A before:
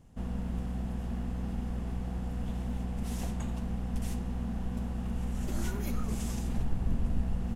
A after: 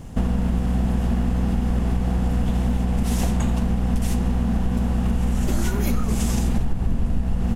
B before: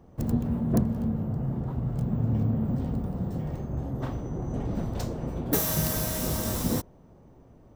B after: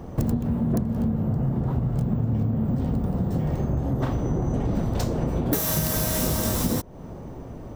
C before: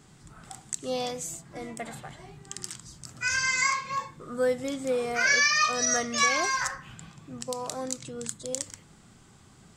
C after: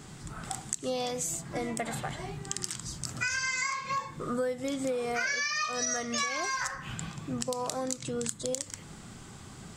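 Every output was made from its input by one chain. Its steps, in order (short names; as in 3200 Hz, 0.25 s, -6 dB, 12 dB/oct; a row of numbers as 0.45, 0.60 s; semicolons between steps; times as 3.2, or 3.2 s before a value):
compressor 8:1, threshold -37 dBFS; normalise peaks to -9 dBFS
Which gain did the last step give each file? +20.0, +16.0, +8.0 dB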